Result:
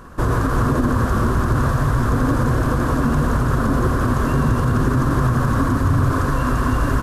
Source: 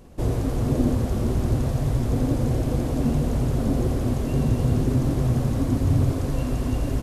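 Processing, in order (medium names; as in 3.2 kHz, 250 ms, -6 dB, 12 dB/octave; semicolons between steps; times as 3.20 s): high-order bell 1.3 kHz +15.5 dB 1 oct; peak limiter -15 dBFS, peak gain reduction 7.5 dB; trim +6 dB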